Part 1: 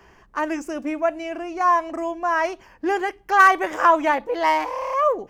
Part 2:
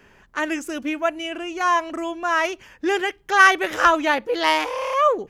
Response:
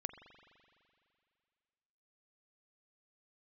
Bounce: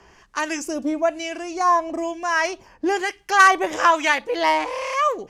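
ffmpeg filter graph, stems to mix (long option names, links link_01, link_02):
-filter_complex "[0:a]lowpass=6500,crystalizer=i=7.5:c=0,acrossover=split=1100[link_01][link_02];[link_01]aeval=exprs='val(0)*(1-0.7/2+0.7/2*cos(2*PI*1.1*n/s))':channel_layout=same[link_03];[link_02]aeval=exprs='val(0)*(1-0.7/2-0.7/2*cos(2*PI*1.1*n/s))':channel_layout=same[link_04];[link_03][link_04]amix=inputs=2:normalize=0,volume=0dB,asplit=2[link_05][link_06];[1:a]acompressor=threshold=-25dB:ratio=6,volume=-5dB[link_07];[link_06]apad=whole_len=233570[link_08];[link_07][link_08]sidechaingate=range=-33dB:threshold=-40dB:ratio=16:detection=peak[link_09];[link_05][link_09]amix=inputs=2:normalize=0"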